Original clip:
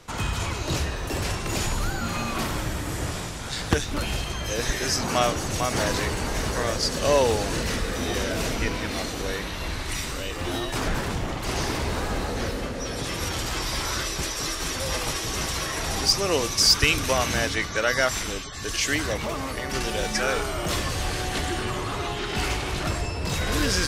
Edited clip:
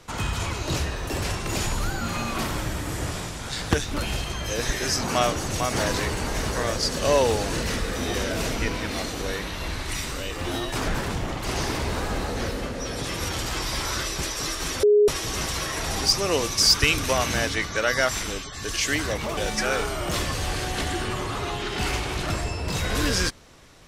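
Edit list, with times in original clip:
0:14.83–0:15.08: beep over 416 Hz −13 dBFS
0:19.37–0:19.94: remove

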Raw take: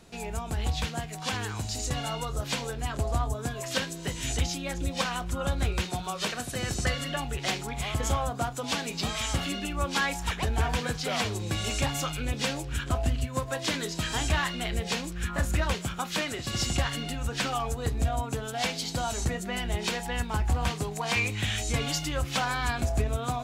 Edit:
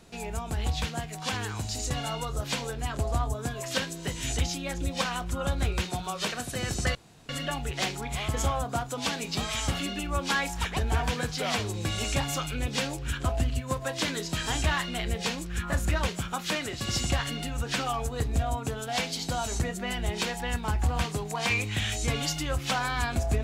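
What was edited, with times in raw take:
0:06.95: splice in room tone 0.34 s

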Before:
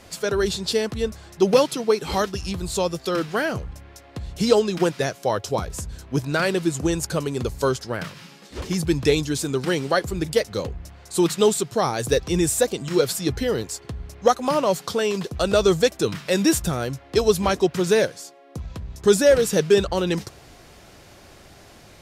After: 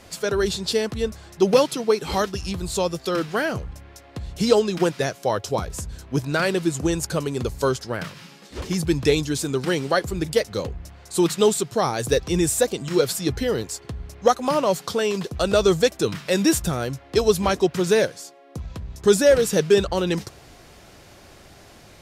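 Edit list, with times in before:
nothing was edited

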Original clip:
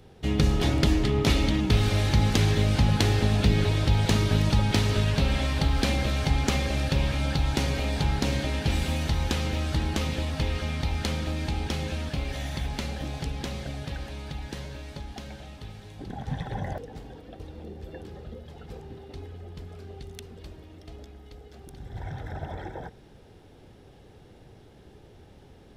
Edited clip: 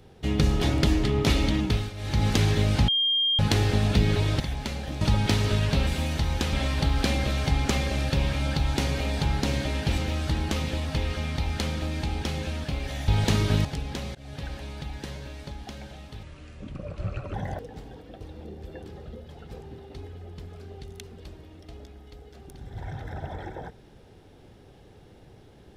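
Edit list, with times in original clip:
0:01.61–0:02.28: duck −15 dB, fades 0.32 s
0:02.88: insert tone 3,210 Hz −20.5 dBFS 0.51 s
0:03.89–0:04.46: swap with 0:12.53–0:13.14
0:08.77–0:09.43: move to 0:05.32
0:13.64–0:14.04: fade in equal-power, from −24 dB
0:15.72–0:16.53: play speed 73%

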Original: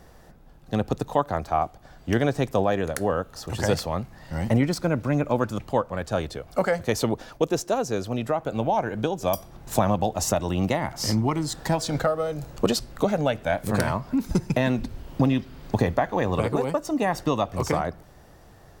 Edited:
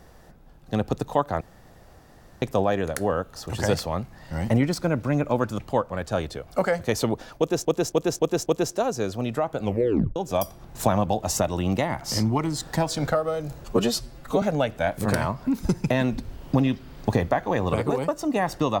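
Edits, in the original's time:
0:01.41–0:02.42: fill with room tone
0:07.38–0:07.65: repeat, 5 plays
0:08.55: tape stop 0.53 s
0:12.56–0:13.08: time-stretch 1.5×

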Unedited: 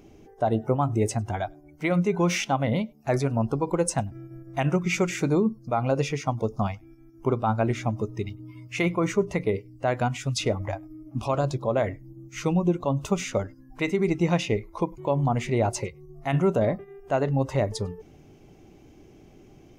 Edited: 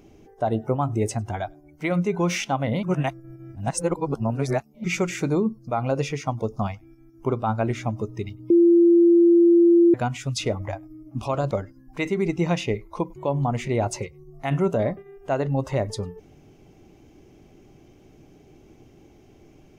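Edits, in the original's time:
0:02.83–0:04.84: reverse
0:08.50–0:09.94: beep over 342 Hz −11.5 dBFS
0:11.51–0:13.33: remove

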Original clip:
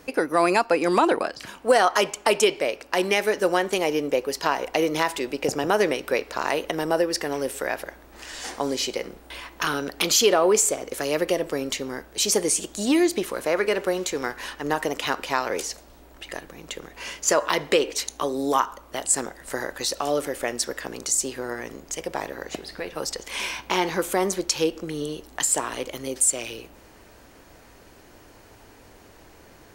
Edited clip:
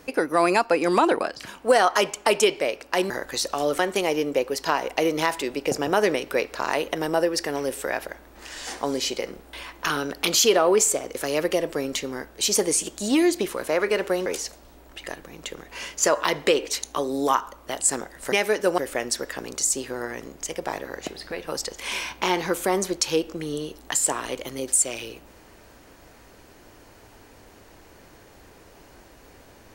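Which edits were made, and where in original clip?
0:03.10–0:03.56: swap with 0:19.57–0:20.26
0:14.03–0:15.51: remove

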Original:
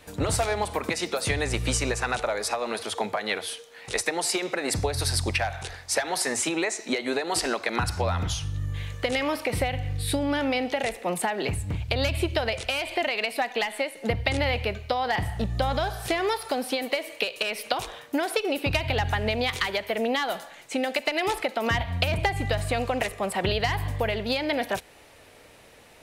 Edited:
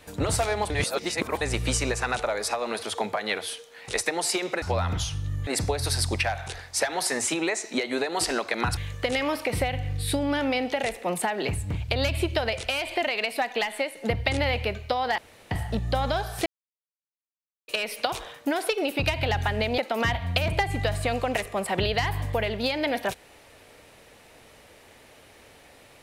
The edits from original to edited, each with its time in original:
0:00.70–0:01.41: reverse
0:07.92–0:08.77: move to 0:04.62
0:15.18: splice in room tone 0.33 s
0:16.13–0:17.35: silence
0:19.45–0:21.44: remove

